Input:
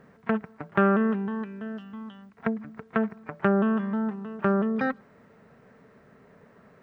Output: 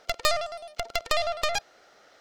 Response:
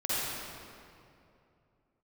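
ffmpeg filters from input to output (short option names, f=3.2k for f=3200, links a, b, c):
-af "asetrate=136710,aresample=44100,aeval=exprs='0.422*(cos(1*acos(clip(val(0)/0.422,-1,1)))-cos(1*PI/2))+0.0944*(cos(6*acos(clip(val(0)/0.422,-1,1)))-cos(6*PI/2))':c=same,volume=-2dB"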